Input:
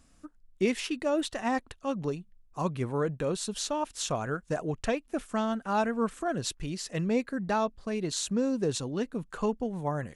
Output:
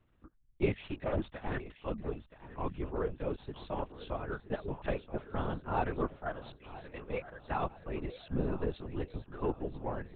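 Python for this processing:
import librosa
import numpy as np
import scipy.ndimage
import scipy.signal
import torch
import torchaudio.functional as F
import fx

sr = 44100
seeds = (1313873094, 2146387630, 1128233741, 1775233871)

p1 = fx.lower_of_two(x, sr, delay_ms=3.2, at=(0.81, 1.61))
p2 = fx.steep_highpass(p1, sr, hz=380.0, slope=36, at=(6.15, 7.59), fade=0.02)
p3 = 10.0 ** (-26.0 / 20.0) * np.tanh(p2 / 10.0 ** (-26.0 / 20.0))
p4 = p2 + (p3 * 10.0 ** (-9.0 / 20.0))
p5 = fx.air_absorb(p4, sr, metres=130.0)
p6 = p5 + fx.echo_feedback(p5, sr, ms=974, feedback_pct=45, wet_db=-11.0, dry=0)
p7 = fx.lpc_vocoder(p6, sr, seeds[0], excitation='whisper', order=10)
p8 = fx.upward_expand(p7, sr, threshold_db=-35.0, expansion=1.5)
y = p8 * 10.0 ** (-4.0 / 20.0)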